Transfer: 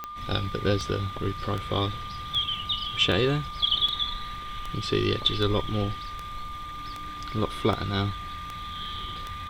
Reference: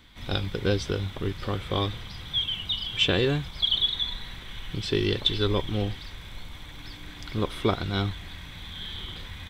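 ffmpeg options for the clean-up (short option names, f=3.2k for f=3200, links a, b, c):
-af "adeclick=t=4,bandreject=f=1.2k:w=30"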